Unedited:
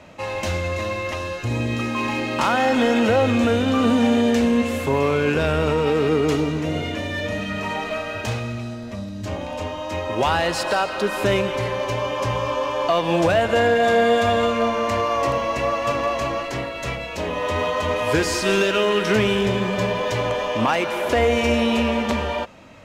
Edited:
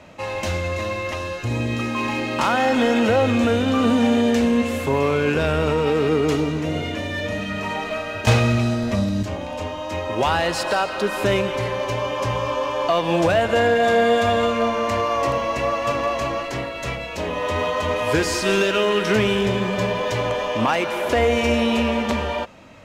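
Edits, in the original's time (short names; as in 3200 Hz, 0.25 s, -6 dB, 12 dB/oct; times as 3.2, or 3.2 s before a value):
8.27–9.23 gain +10 dB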